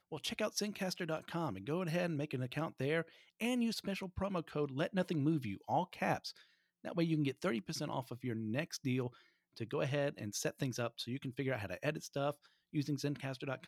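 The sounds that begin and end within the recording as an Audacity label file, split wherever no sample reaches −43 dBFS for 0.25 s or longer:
3.400000	6.300000	sound
6.850000	9.080000	sound
9.580000	12.320000	sound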